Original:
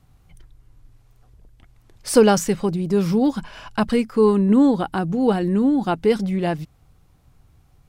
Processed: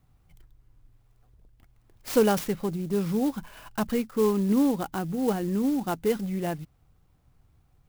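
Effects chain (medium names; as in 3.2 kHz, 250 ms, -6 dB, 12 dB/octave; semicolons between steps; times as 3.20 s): sampling jitter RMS 0.04 ms; trim -7.5 dB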